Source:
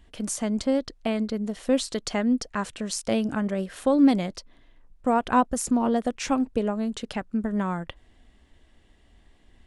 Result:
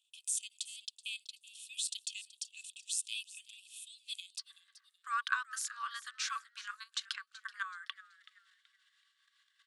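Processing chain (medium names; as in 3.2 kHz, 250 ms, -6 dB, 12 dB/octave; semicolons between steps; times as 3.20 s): level held to a coarse grid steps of 13 dB; rippled Chebyshev high-pass 2.5 kHz, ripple 9 dB, from 4.38 s 1.1 kHz; frequency-shifting echo 378 ms, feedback 32%, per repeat +130 Hz, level -17 dB; trim +7.5 dB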